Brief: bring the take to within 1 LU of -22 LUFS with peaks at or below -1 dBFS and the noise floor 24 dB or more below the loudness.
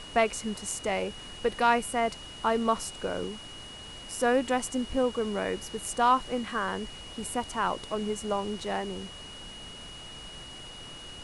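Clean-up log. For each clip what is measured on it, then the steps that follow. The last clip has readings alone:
steady tone 2900 Hz; tone level -44 dBFS; noise floor -44 dBFS; noise floor target -54 dBFS; loudness -29.5 LUFS; peak -11.5 dBFS; loudness target -22.0 LUFS
-> notch 2900 Hz, Q 30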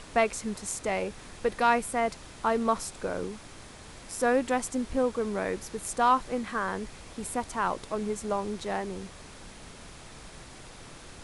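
steady tone none; noise floor -48 dBFS; noise floor target -54 dBFS
-> noise print and reduce 6 dB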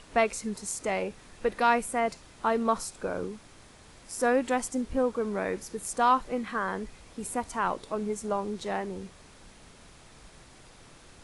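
noise floor -54 dBFS; loudness -30.0 LUFS; peak -12.0 dBFS; loudness target -22.0 LUFS
-> gain +8 dB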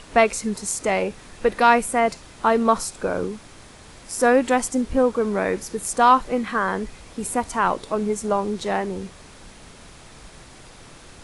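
loudness -22.0 LUFS; peak -4.0 dBFS; noise floor -46 dBFS

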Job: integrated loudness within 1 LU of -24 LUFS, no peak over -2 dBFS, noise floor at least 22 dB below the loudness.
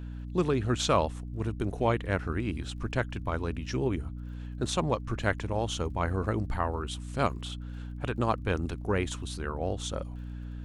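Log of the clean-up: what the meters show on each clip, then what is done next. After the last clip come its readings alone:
ticks 36/s; hum 60 Hz; harmonics up to 300 Hz; hum level -36 dBFS; loudness -31.5 LUFS; peak -11.0 dBFS; loudness target -24.0 LUFS
-> de-click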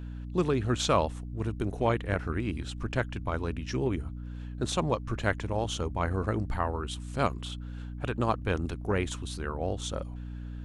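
ticks 0.19/s; hum 60 Hz; harmonics up to 300 Hz; hum level -36 dBFS
-> notches 60/120/180/240/300 Hz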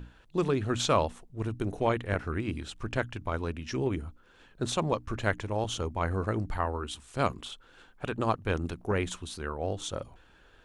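hum none; loudness -32.0 LUFS; peak -12.0 dBFS; loudness target -24.0 LUFS
-> gain +8 dB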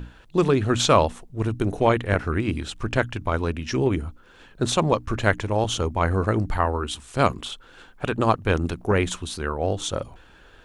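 loudness -24.0 LUFS; peak -4.0 dBFS; noise floor -51 dBFS

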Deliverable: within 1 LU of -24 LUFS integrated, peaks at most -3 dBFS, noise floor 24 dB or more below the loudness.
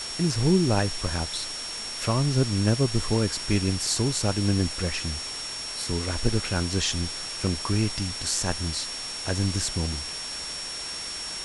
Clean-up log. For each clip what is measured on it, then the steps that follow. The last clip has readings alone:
steady tone 5500 Hz; tone level -34 dBFS; noise floor -35 dBFS; noise floor target -51 dBFS; loudness -26.5 LUFS; peak -7.5 dBFS; loudness target -24.0 LUFS
-> notch 5500 Hz, Q 30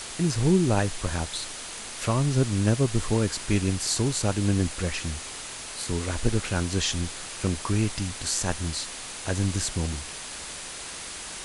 steady tone none; noise floor -38 dBFS; noise floor target -52 dBFS
-> noise print and reduce 14 dB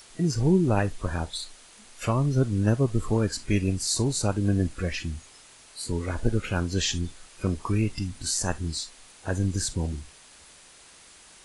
noise floor -52 dBFS; loudness -27.0 LUFS; peak -8.0 dBFS; loudness target -24.0 LUFS
-> gain +3 dB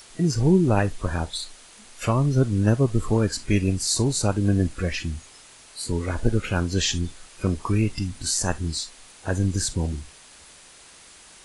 loudness -24.0 LUFS; peak -5.0 dBFS; noise floor -49 dBFS

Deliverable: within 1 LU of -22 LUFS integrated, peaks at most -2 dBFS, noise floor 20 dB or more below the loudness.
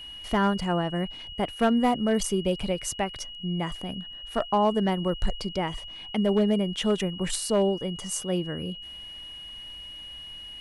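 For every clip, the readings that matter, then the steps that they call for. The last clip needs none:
clipped 0.4%; flat tops at -15.5 dBFS; steady tone 2900 Hz; tone level -39 dBFS; loudness -27.5 LUFS; peak -15.5 dBFS; loudness target -22.0 LUFS
-> clip repair -15.5 dBFS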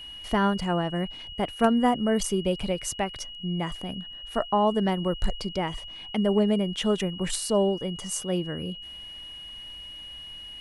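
clipped 0.0%; steady tone 2900 Hz; tone level -39 dBFS
-> notch 2900 Hz, Q 30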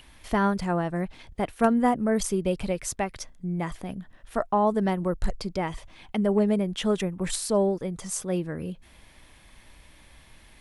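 steady tone none; loudness -27.0 LUFS; peak -7.5 dBFS; loudness target -22.0 LUFS
-> gain +5 dB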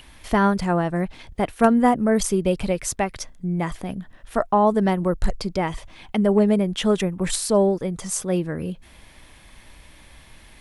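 loudness -22.0 LUFS; peak -2.5 dBFS; noise floor -49 dBFS

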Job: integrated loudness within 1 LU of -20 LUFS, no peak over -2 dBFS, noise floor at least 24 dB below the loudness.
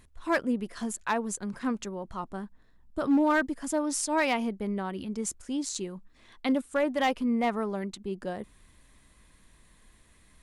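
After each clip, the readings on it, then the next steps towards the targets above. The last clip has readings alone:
clipped 0.4%; flat tops at -18.5 dBFS; loudness -30.0 LUFS; peak -18.5 dBFS; loudness target -20.0 LUFS
-> clip repair -18.5 dBFS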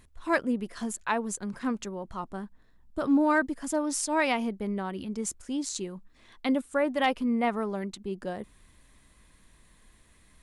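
clipped 0.0%; loudness -30.0 LUFS; peak -13.0 dBFS; loudness target -20.0 LUFS
-> gain +10 dB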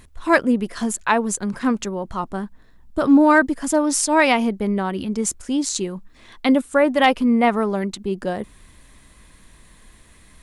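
loudness -20.0 LUFS; peak -3.0 dBFS; noise floor -50 dBFS

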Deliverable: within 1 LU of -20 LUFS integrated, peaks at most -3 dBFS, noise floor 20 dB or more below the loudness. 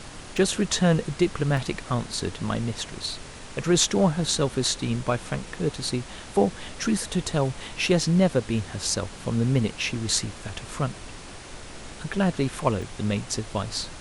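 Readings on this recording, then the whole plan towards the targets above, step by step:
dropouts 5; longest dropout 1.8 ms; noise floor -41 dBFS; noise floor target -46 dBFS; loudness -26.0 LUFS; peak -6.0 dBFS; loudness target -20.0 LUFS
-> interpolate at 0.37/1.57/2.36/8.02/12.82, 1.8 ms; noise print and reduce 6 dB; gain +6 dB; limiter -3 dBFS

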